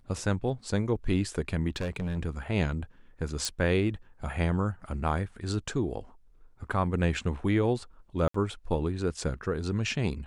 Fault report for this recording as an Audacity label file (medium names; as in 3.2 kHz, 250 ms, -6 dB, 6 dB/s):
1.700000	2.180000	clipped -28 dBFS
3.450000	3.450000	pop
8.280000	8.340000	dropout 64 ms